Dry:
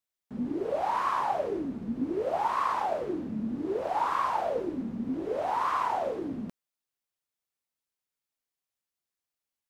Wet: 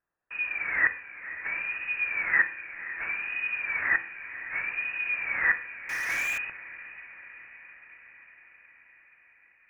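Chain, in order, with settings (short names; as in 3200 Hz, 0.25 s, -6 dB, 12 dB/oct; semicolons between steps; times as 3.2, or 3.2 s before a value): resonant low shelf 730 Hz -7.5 dB, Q 3; flipped gate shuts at -20 dBFS, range -38 dB; inverted band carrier 2700 Hz; diffused feedback echo 0.52 s, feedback 67%, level -13.5 dB; reverb RT60 0.60 s, pre-delay 3 ms, DRR 8 dB; 5.89–6.38 power-law curve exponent 0.5; gain +8.5 dB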